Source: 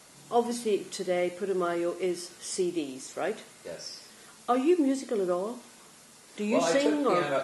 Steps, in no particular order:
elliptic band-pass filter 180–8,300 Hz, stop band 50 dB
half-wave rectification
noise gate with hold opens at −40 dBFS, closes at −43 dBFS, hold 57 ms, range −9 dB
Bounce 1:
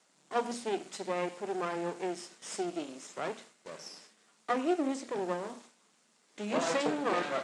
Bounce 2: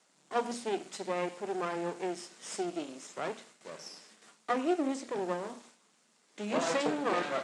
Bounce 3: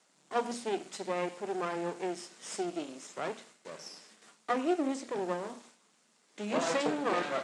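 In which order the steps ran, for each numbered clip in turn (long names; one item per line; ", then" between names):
half-wave rectification, then elliptic band-pass filter, then noise gate with hold
noise gate with hold, then half-wave rectification, then elliptic band-pass filter
half-wave rectification, then noise gate with hold, then elliptic band-pass filter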